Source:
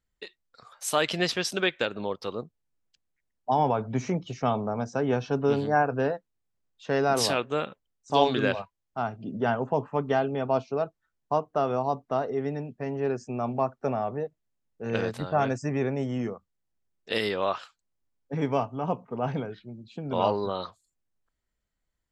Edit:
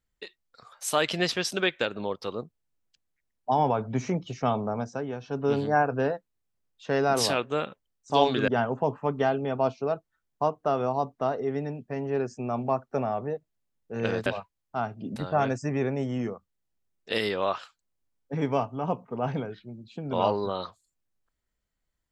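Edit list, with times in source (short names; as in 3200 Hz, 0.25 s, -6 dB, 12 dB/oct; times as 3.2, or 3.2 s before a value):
4.75–5.57 dip -9.5 dB, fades 0.37 s
8.48–9.38 move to 15.16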